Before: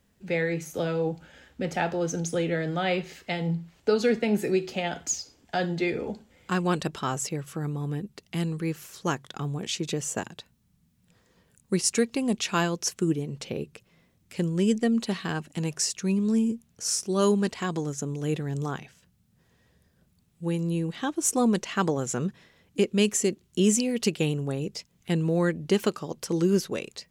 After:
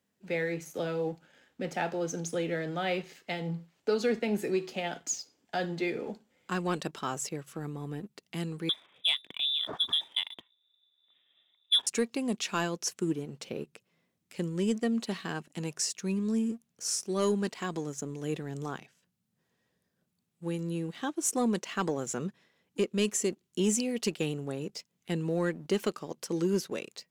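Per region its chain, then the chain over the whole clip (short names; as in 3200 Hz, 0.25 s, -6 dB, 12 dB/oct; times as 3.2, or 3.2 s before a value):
8.69–11.87 bell 280 Hz +7.5 dB 2 oct + inverted band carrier 3700 Hz
whole clip: HPF 170 Hz 12 dB/oct; sample leveller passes 1; gain -8 dB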